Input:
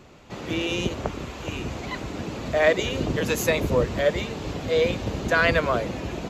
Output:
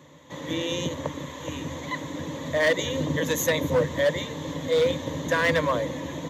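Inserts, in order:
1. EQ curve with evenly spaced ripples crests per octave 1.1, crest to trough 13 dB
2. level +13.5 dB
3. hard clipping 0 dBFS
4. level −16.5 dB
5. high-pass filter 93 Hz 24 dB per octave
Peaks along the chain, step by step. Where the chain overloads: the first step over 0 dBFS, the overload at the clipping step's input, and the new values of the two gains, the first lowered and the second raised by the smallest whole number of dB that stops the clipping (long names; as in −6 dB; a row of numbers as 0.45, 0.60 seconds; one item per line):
−4.0, +9.5, 0.0, −16.5, −12.0 dBFS
step 2, 9.5 dB
step 2 +3.5 dB, step 4 −6.5 dB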